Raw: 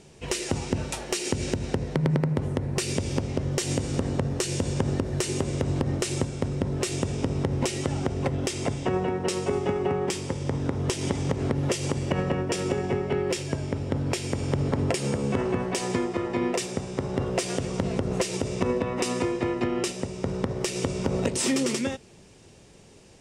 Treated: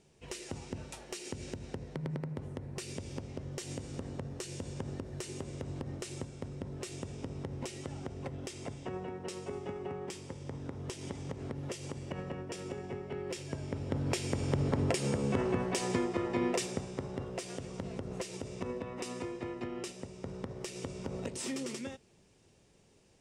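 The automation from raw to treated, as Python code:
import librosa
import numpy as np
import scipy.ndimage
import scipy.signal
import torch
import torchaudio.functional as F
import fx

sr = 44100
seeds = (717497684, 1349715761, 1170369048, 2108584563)

y = fx.gain(x, sr, db=fx.line((13.09, -14.0), (14.14, -5.0), (16.66, -5.0), (17.29, -13.0)))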